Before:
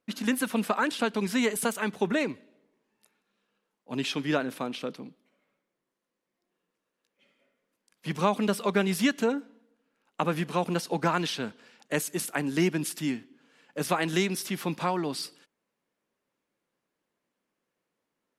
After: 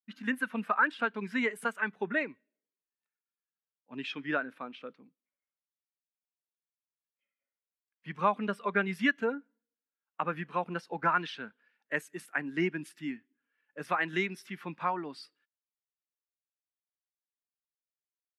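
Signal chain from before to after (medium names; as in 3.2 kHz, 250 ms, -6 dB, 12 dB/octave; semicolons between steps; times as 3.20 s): peaking EQ 1.7 kHz +11.5 dB 2 oct; spectral contrast expander 1.5:1; trim -9 dB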